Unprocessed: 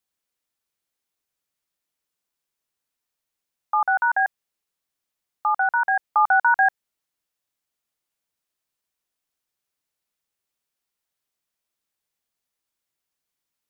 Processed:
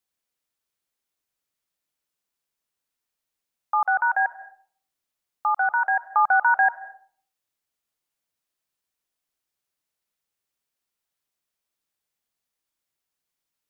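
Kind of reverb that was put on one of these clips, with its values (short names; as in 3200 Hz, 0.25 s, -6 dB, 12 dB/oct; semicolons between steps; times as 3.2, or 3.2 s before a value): digital reverb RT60 0.51 s, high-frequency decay 0.45×, pre-delay 0.115 s, DRR 15 dB; gain -1 dB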